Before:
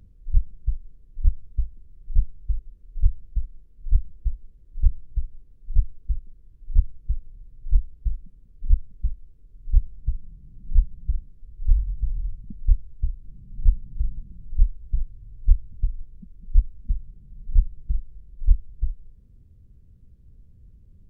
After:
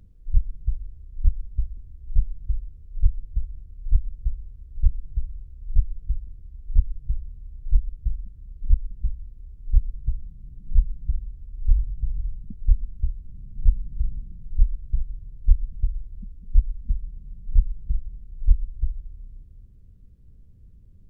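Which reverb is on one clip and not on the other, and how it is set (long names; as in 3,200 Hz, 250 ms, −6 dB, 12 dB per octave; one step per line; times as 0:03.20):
comb and all-pass reverb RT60 2.8 s, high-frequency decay 0.9×, pre-delay 95 ms, DRR 12.5 dB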